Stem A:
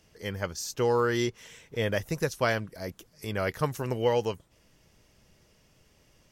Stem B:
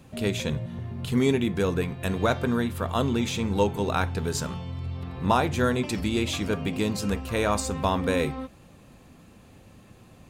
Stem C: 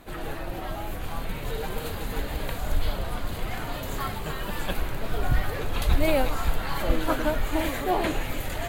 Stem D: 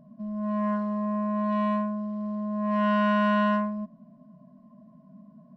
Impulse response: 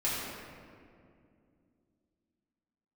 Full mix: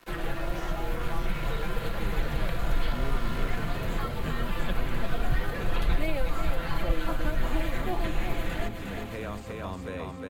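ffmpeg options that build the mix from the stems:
-filter_complex "[0:a]volume=-9.5dB[link_01];[1:a]acrossover=split=2900[link_02][link_03];[link_03]acompressor=threshold=-44dB:ratio=4:attack=1:release=60[link_04];[link_02][link_04]amix=inputs=2:normalize=0,adelay=1800,volume=-9dB,asplit=2[link_05][link_06];[link_06]volume=-3.5dB[link_07];[2:a]equalizer=frequency=1700:width=0.32:gain=4.5,aecho=1:1:5.9:0.62,aeval=exprs='sgn(val(0))*max(abs(val(0))-0.00708,0)':channel_layout=same,volume=2.5dB,asplit=2[link_08][link_09];[link_09]volume=-11.5dB[link_10];[3:a]acrusher=samples=37:mix=1:aa=0.000001,highpass=frequency=1200:width_type=q:width=4.9,volume=-7.5dB[link_11];[link_07][link_10]amix=inputs=2:normalize=0,aecho=0:1:356|712|1068|1424|1780|2136:1|0.46|0.212|0.0973|0.0448|0.0206[link_12];[link_01][link_05][link_08][link_11][link_12]amix=inputs=5:normalize=0,equalizer=frequency=860:width=6.7:gain=-4,acrossover=split=150|480|3600[link_13][link_14][link_15][link_16];[link_13]acompressor=threshold=-21dB:ratio=4[link_17];[link_14]acompressor=threshold=-40dB:ratio=4[link_18];[link_15]acompressor=threshold=-37dB:ratio=4[link_19];[link_16]acompressor=threshold=-53dB:ratio=4[link_20];[link_17][link_18][link_19][link_20]amix=inputs=4:normalize=0"

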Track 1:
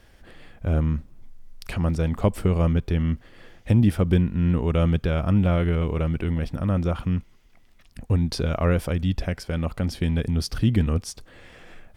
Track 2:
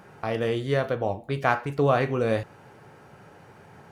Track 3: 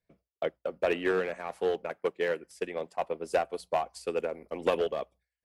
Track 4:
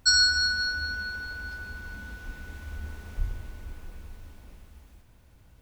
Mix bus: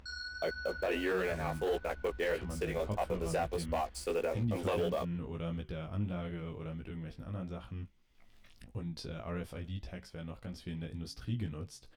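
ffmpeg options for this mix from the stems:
ffmpeg -i stem1.wav -i stem2.wav -i stem3.wav -i stem4.wav -filter_complex "[0:a]equalizer=frequency=3600:width=1.5:gain=3.5,flanger=delay=7.4:depth=5:regen=-83:speed=0.84:shape=sinusoidal,adelay=650,volume=-9.5dB[link_01];[2:a]highshelf=frequency=7500:gain=6.5,acrusher=bits=7:mix=0:aa=0.5,volume=2.5dB[link_02];[3:a]lowpass=3500,equalizer=frequency=65:width_type=o:width=0.34:gain=12.5,alimiter=limit=-22.5dB:level=0:latency=1:release=204,volume=-9.5dB[link_03];[link_01][link_02][link_03]amix=inputs=3:normalize=0,flanger=delay=16:depth=3.8:speed=1.6,alimiter=level_in=1dB:limit=-24dB:level=0:latency=1:release=19,volume=-1dB,volume=0dB,acompressor=mode=upward:threshold=-46dB:ratio=2.5" out.wav

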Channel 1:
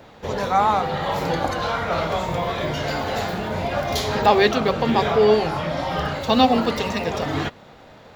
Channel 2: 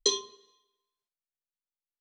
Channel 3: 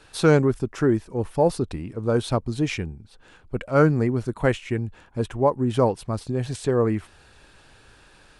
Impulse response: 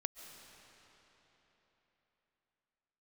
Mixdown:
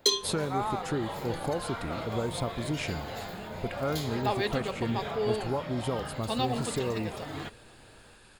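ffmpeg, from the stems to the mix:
-filter_complex "[0:a]volume=-14dB[link_01];[1:a]asoftclip=type=tanh:threshold=-14dB,volume=1.5dB[link_02];[2:a]acompressor=threshold=-24dB:ratio=6,adelay=100,volume=-6dB,asplit=2[link_03][link_04];[link_04]volume=-10.5dB[link_05];[3:a]atrim=start_sample=2205[link_06];[link_05][link_06]afir=irnorm=-1:irlink=0[link_07];[link_01][link_02][link_03][link_07]amix=inputs=4:normalize=0,highshelf=frequency=5900:gain=8.5,bandreject=frequency=5800:width=6.7"

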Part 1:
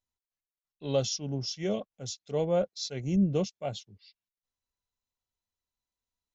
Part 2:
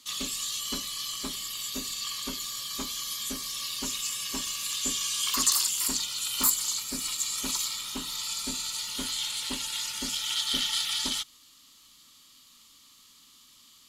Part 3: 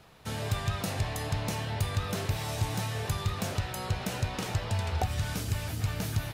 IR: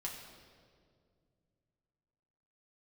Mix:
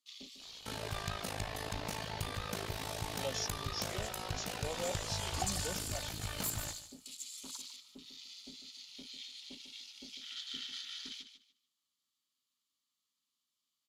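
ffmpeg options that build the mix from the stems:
-filter_complex "[0:a]highpass=frequency=1200:poles=1,adelay=2300,volume=-5dB[link_01];[1:a]afwtdn=0.0158,highpass=frequency=140:poles=1,volume=-14.5dB,asplit=2[link_02][link_03];[link_03]volume=-10.5dB[link_04];[2:a]equalizer=frequency=120:width_type=o:width=1.8:gain=-8,tremolo=f=53:d=0.889,adelay=400,volume=-1dB,asplit=2[link_05][link_06];[link_06]volume=-16dB[link_07];[link_04][link_07]amix=inputs=2:normalize=0,aecho=0:1:148|296|444|592:1|0.22|0.0484|0.0106[link_08];[link_01][link_02][link_05][link_08]amix=inputs=4:normalize=0"

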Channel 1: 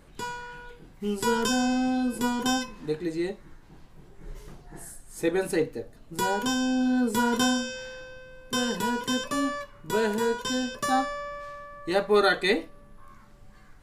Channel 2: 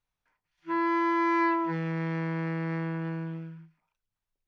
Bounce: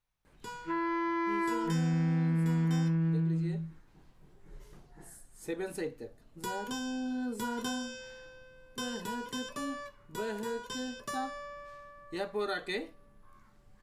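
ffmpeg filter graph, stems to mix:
ffmpeg -i stem1.wav -i stem2.wav -filter_complex "[0:a]adelay=250,volume=-9dB[link_01];[1:a]asubboost=boost=10:cutoff=210,volume=0dB[link_02];[link_01][link_02]amix=inputs=2:normalize=0,acompressor=threshold=-33dB:ratio=2" out.wav

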